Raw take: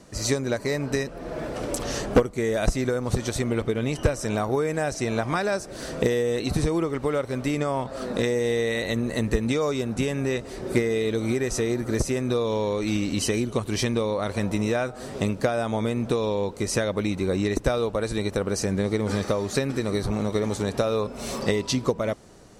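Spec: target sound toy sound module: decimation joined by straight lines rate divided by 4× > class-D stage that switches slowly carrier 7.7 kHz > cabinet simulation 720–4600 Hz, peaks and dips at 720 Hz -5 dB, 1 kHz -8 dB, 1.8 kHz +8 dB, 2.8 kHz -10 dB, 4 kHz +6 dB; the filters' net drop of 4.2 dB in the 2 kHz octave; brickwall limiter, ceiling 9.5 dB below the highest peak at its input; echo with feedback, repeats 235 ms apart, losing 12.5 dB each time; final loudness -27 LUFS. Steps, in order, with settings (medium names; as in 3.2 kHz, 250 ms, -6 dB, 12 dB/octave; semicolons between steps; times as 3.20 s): peaking EQ 2 kHz -8.5 dB; peak limiter -19 dBFS; feedback delay 235 ms, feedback 24%, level -12.5 dB; decimation joined by straight lines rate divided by 4×; class-D stage that switches slowly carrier 7.7 kHz; cabinet simulation 720–4600 Hz, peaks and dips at 720 Hz -5 dB, 1 kHz -8 dB, 1.8 kHz +8 dB, 2.8 kHz -10 dB, 4 kHz +6 dB; trim +11.5 dB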